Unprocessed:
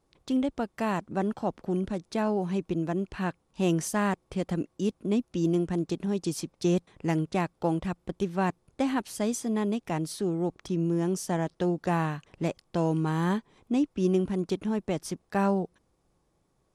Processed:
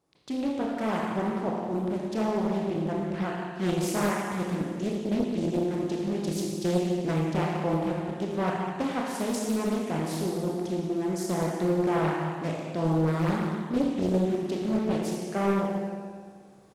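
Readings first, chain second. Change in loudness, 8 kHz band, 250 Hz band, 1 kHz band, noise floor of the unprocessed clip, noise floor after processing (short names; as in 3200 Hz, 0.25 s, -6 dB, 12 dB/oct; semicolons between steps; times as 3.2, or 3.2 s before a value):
+1.0 dB, -0.5 dB, +0.5 dB, +1.0 dB, -72 dBFS, -44 dBFS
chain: HPF 100 Hz 12 dB/oct; reverse; upward compressor, threshold -48 dBFS; reverse; echo 0.175 s -14.5 dB; Schroeder reverb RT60 1.8 s, combs from 25 ms, DRR -2 dB; Doppler distortion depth 0.71 ms; gain -3 dB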